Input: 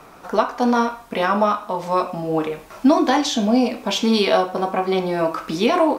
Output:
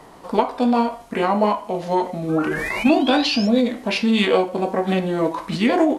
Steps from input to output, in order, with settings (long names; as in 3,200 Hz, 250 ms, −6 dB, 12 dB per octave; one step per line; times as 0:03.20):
sound drawn into the spectrogram rise, 0:02.29–0:03.48, 1,500–7,000 Hz −25 dBFS
formants moved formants −4 semitones